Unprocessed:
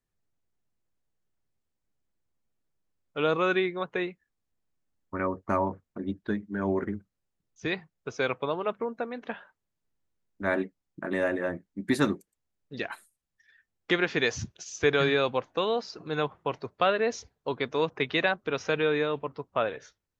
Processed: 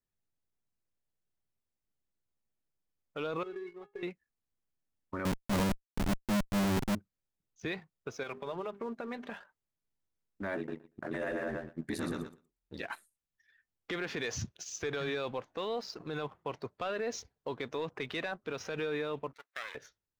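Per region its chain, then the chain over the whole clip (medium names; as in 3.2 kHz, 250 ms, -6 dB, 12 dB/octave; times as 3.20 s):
3.43–4.03 s: tilt shelf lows +9 dB, about 1.5 kHz + inharmonic resonator 400 Hz, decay 0.23 s, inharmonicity 0.008 + compression 10:1, threshold -36 dBFS
5.25–6.95 s: low-pass 1.3 kHz 24 dB/octave + peaking EQ 210 Hz +11.5 dB 0.69 oct + Schmitt trigger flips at -25 dBFS
8.23–9.32 s: hum notches 50/100/150/200/250/300/350/400 Hz + comb 5 ms, depth 46% + compression, threshold -32 dBFS
10.56–12.83 s: ring modulator 40 Hz + feedback delay 118 ms, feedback 16%, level -5.5 dB
19.33–19.75 s: comb filter that takes the minimum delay 0.51 ms + high-pass 1.3 kHz + compression 4:1, threshold -35 dBFS
whole clip: waveshaping leveller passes 1; peak limiter -22 dBFS; trim -5 dB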